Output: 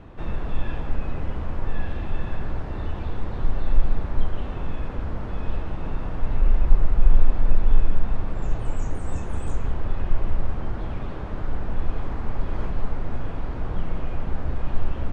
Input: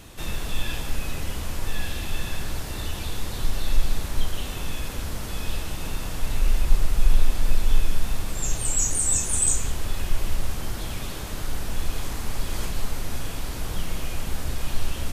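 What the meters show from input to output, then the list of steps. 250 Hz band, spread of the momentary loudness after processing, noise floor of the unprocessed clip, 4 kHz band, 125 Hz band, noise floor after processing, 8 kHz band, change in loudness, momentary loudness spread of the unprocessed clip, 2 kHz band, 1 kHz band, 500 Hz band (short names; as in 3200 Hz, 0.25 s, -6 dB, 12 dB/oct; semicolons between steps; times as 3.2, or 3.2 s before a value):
+2.5 dB, 8 LU, -32 dBFS, -15.0 dB, +2.5 dB, -31 dBFS, -30.0 dB, -1.0 dB, 11 LU, -5.0 dB, +1.0 dB, +2.5 dB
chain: LPF 1300 Hz 12 dB/oct; gain +2.5 dB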